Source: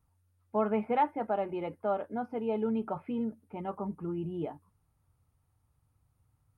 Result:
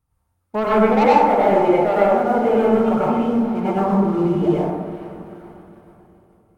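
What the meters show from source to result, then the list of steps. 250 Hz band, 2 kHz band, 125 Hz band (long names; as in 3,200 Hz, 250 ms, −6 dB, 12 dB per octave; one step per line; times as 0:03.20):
+16.0 dB, +18.5 dB, +17.0 dB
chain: hum removal 166.3 Hz, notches 37
on a send: feedback delay with all-pass diffusion 476 ms, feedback 57%, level −15 dB
on the sum: leveller curve on the samples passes 2
dense smooth reverb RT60 1.2 s, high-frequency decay 0.45×, pre-delay 80 ms, DRR −8 dB
level +2.5 dB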